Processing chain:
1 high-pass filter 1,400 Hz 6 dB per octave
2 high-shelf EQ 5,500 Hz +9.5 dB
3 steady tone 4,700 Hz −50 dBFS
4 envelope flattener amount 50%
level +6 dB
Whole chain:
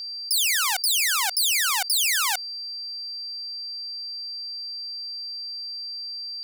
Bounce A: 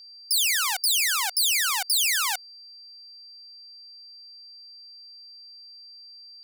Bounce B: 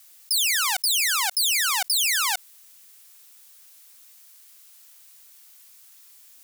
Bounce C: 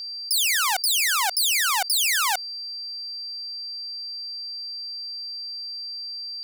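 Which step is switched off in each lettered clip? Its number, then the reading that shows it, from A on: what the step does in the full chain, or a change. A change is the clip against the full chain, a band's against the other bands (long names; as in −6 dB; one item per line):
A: 4, change in crest factor −2.0 dB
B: 3, 4 kHz band −1.5 dB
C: 1, 500 Hz band +5.0 dB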